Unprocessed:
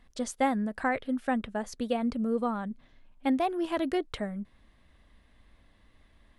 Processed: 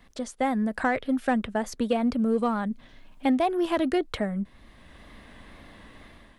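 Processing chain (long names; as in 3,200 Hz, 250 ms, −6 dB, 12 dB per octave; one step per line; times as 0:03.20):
automatic gain control gain up to 10 dB
in parallel at −11.5 dB: hard clipping −19.5 dBFS, distortion −9 dB
on the sum: pitch vibrato 2 Hz 41 cents
multiband upward and downward compressor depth 40%
level −6.5 dB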